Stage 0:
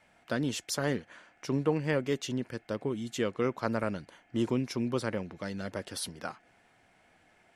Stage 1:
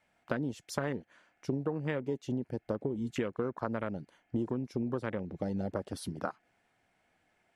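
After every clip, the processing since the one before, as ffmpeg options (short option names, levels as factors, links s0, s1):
-af "afwtdn=0.0141,acompressor=threshold=0.0141:ratio=10,volume=2.37"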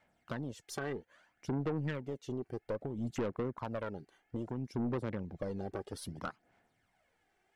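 -af "equalizer=f=2500:w=5.8:g=-3.5,aphaser=in_gain=1:out_gain=1:delay=2.6:decay=0.55:speed=0.61:type=sinusoidal,aeval=exprs='(tanh(22.4*val(0)+0.35)-tanh(0.35))/22.4':c=same,volume=0.75"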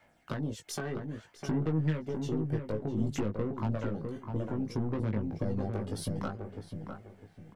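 -filter_complex "[0:a]acrossover=split=250[s0][s1];[s1]acompressor=threshold=0.00631:ratio=5[s2];[s0][s2]amix=inputs=2:normalize=0,asplit=2[s3][s4];[s4]adelay=19,volume=0.631[s5];[s3][s5]amix=inputs=2:normalize=0,asplit=2[s6][s7];[s7]adelay=654,lowpass=f=1500:p=1,volume=0.562,asplit=2[s8][s9];[s9]adelay=654,lowpass=f=1500:p=1,volume=0.32,asplit=2[s10][s11];[s11]adelay=654,lowpass=f=1500:p=1,volume=0.32,asplit=2[s12][s13];[s13]adelay=654,lowpass=f=1500:p=1,volume=0.32[s14];[s6][s8][s10][s12][s14]amix=inputs=5:normalize=0,volume=2"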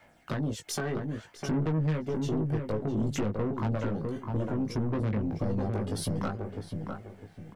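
-af "asoftclip=type=tanh:threshold=0.0376,volume=1.88"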